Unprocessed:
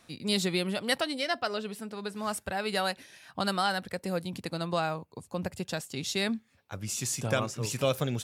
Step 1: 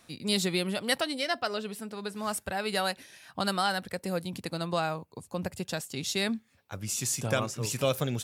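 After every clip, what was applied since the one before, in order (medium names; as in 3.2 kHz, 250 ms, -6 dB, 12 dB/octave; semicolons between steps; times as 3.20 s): treble shelf 8.6 kHz +5 dB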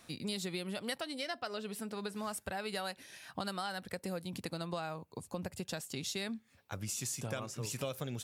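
compression 4:1, threshold -37 dBFS, peak gain reduction 13 dB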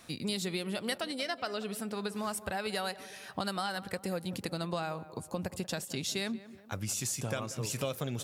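tape echo 185 ms, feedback 60%, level -14 dB, low-pass 1.4 kHz; trim +4 dB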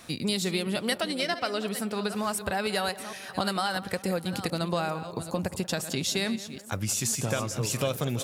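chunks repeated in reverse 447 ms, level -12 dB; trim +6 dB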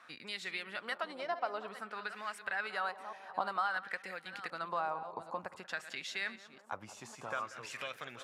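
LFO band-pass sine 0.54 Hz 890–1900 Hz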